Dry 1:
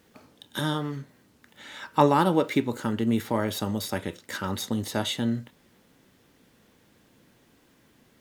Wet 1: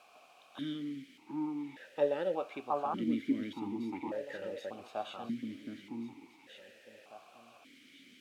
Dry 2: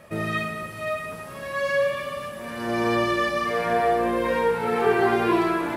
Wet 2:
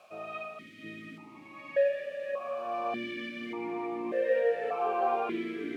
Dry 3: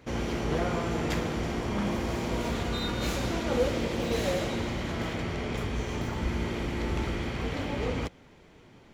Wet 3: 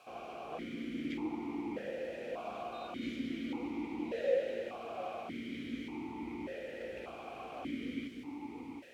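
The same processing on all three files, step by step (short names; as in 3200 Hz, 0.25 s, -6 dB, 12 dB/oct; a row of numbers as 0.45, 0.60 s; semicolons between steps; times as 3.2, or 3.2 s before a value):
added noise white -42 dBFS; echo with dull and thin repeats by turns 0.72 s, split 1700 Hz, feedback 50%, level -3 dB; vowel sequencer 1.7 Hz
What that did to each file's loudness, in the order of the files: -10.5, -8.0, -9.5 LU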